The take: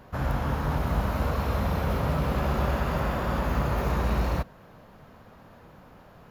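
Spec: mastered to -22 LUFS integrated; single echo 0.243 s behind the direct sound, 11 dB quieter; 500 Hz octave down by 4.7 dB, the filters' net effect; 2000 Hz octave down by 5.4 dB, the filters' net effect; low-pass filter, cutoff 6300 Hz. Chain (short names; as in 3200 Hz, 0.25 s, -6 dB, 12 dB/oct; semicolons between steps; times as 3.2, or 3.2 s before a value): LPF 6300 Hz; bell 500 Hz -5.5 dB; bell 2000 Hz -7 dB; echo 0.243 s -11 dB; gain +7 dB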